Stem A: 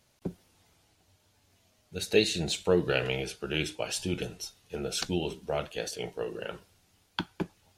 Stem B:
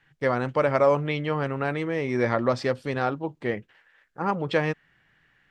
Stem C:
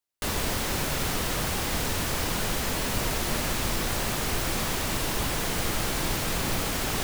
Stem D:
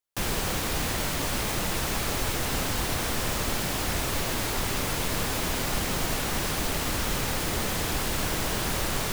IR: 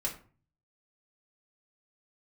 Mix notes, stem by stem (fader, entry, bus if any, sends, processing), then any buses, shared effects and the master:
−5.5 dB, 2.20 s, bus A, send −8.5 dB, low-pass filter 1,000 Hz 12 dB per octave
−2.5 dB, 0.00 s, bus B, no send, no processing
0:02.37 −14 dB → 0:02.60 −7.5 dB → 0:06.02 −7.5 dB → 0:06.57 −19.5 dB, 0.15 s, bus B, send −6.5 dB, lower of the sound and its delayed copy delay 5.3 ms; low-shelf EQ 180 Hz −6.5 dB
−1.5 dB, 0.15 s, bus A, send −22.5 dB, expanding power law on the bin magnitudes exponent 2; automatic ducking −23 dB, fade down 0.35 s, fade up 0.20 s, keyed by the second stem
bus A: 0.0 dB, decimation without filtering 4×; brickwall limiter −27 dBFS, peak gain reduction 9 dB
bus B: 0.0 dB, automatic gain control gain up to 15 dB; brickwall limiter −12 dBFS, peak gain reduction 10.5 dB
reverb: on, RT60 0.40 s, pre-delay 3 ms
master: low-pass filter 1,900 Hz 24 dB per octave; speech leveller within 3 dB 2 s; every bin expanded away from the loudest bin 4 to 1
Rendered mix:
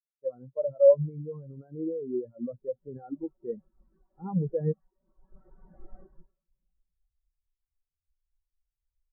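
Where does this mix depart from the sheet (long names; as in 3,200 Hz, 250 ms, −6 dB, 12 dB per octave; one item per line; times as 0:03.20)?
stem A: muted
stem D −1.5 dB → −12.5 dB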